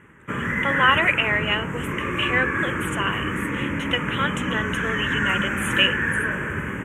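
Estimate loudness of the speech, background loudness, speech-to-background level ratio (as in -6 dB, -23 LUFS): -24.0 LUFS, -25.0 LUFS, 1.0 dB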